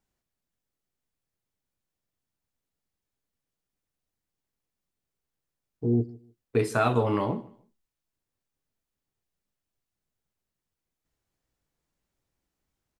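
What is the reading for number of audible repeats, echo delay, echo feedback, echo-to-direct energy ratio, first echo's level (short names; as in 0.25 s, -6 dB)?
2, 0.151 s, 22%, -21.0 dB, -21.0 dB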